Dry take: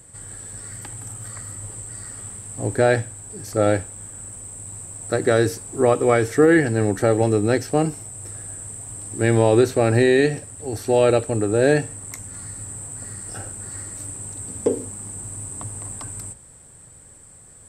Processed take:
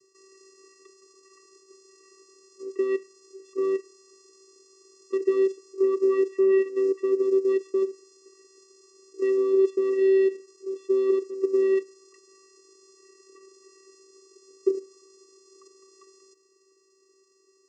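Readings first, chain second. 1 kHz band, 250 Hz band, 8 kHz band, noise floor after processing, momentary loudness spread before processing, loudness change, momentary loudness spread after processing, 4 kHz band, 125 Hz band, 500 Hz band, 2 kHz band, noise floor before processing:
-18.0 dB, -7.0 dB, under -20 dB, -64 dBFS, 17 LU, -3.0 dB, 10 LU, under -15 dB, under -40 dB, -3.5 dB, -17.0 dB, -47 dBFS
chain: level quantiser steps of 10 dB; vocoder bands 8, square 385 Hz

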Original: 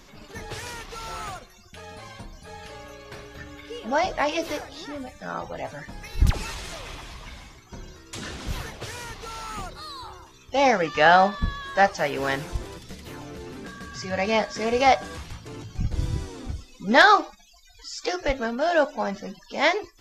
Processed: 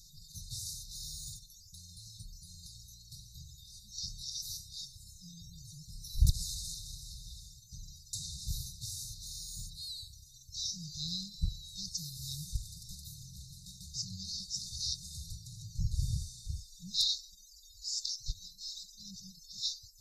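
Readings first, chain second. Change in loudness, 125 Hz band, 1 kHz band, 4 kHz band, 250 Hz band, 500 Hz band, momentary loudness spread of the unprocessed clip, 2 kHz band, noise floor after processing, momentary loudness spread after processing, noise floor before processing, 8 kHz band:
-14.5 dB, -6.5 dB, under -40 dB, -4.0 dB, -20.0 dB, under -40 dB, 22 LU, under -40 dB, -57 dBFS, 15 LU, -52 dBFS, +1.0 dB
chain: brick-wall FIR band-stop 180–3600 Hz; high shelf 4000 Hz +9.5 dB; gain -6 dB

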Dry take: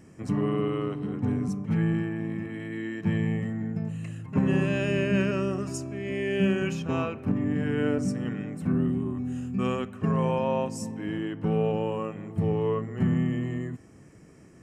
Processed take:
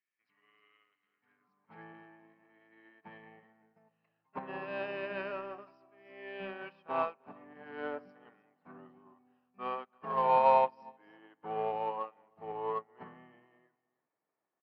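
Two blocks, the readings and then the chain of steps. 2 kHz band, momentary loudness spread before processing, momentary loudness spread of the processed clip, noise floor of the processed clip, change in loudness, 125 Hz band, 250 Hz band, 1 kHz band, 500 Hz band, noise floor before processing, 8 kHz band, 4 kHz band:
-9.5 dB, 8 LU, 25 LU, under -85 dBFS, -6.0 dB, -29.5 dB, -25.0 dB, +4.5 dB, -8.0 dB, -52 dBFS, under -35 dB, -12.0 dB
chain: tilt -3 dB/oct; high-pass sweep 2100 Hz -> 840 Hz, 1.14–1.75; in parallel at -5.5 dB: soft clip -27.5 dBFS, distortion -10 dB; on the sum: downsampling 11025 Hz; on a send: echo 0.31 s -14 dB; on the sum: upward expander 2.5:1, over -43 dBFS

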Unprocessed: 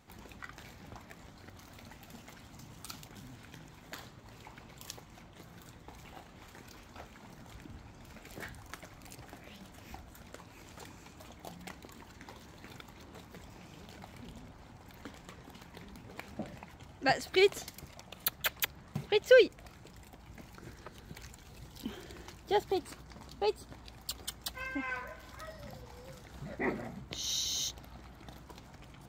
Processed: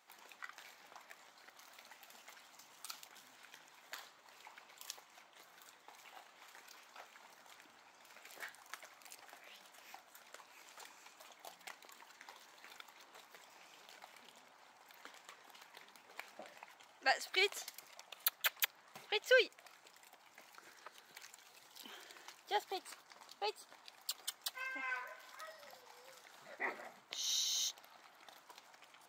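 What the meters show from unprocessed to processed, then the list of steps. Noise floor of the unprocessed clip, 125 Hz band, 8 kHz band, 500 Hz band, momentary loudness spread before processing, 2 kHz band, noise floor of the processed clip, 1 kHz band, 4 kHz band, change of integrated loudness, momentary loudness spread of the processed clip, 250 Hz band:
-55 dBFS, under -30 dB, -2.5 dB, -11.5 dB, 20 LU, -2.5 dB, -65 dBFS, -5.0 dB, -2.5 dB, -6.5 dB, 23 LU, -17.5 dB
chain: HPF 760 Hz 12 dB/oct; gain -2.5 dB

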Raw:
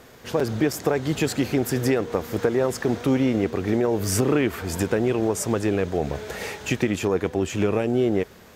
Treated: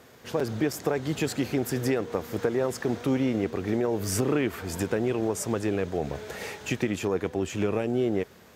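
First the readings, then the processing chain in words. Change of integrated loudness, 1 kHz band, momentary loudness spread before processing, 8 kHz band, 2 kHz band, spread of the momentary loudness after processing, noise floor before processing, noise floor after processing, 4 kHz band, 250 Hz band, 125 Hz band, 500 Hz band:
-4.5 dB, -4.5 dB, 6 LU, -4.5 dB, -4.5 dB, 6 LU, -48 dBFS, -52 dBFS, -4.5 dB, -4.5 dB, -5.0 dB, -4.5 dB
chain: HPF 67 Hz; gain -4.5 dB

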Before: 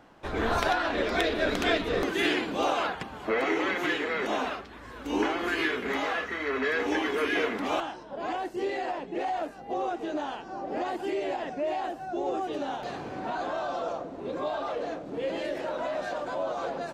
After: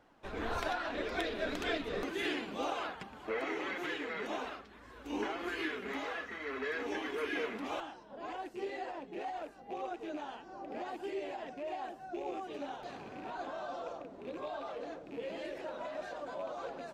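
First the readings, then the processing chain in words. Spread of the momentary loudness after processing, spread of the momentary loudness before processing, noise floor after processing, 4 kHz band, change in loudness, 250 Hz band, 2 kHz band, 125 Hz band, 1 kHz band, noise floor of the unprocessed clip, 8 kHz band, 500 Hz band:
9 LU, 8 LU, -54 dBFS, -9.5 dB, -9.5 dB, -9.5 dB, -9.5 dB, -10.5 dB, -9.5 dB, -44 dBFS, -9.5 dB, -9.5 dB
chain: rattling part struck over -41 dBFS, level -34 dBFS; flange 1.8 Hz, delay 1.8 ms, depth 3.5 ms, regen +53%; gain -5.5 dB

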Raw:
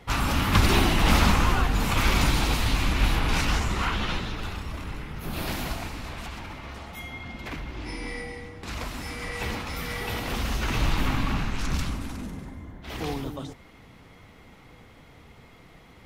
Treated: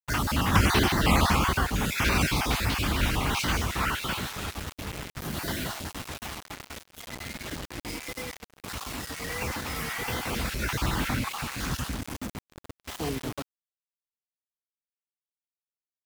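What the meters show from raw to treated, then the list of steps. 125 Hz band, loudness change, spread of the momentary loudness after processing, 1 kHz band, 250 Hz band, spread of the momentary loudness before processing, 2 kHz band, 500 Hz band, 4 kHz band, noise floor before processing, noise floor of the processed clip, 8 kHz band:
-2.5 dB, -1.0 dB, 17 LU, -0.5 dB, -1.5 dB, 17 LU, -0.5 dB, -1.0 dB, -1.0 dB, -51 dBFS, under -85 dBFS, +1.5 dB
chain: random spectral dropouts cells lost 28%; HPF 61 Hz 12 dB/oct; dynamic EQ 1500 Hz, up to +3 dB, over -43 dBFS, Q 3.6; bit-crush 6-bit; gate -42 dBFS, range -16 dB; vibrato 1.5 Hz 87 cents

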